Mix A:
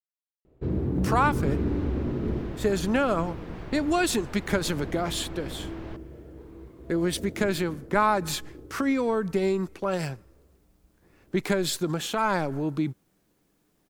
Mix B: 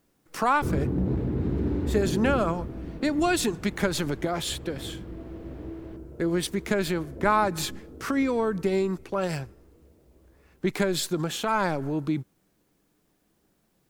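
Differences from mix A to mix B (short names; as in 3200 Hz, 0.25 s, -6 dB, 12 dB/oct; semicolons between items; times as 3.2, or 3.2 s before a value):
speech: entry -0.70 s; second sound -10.0 dB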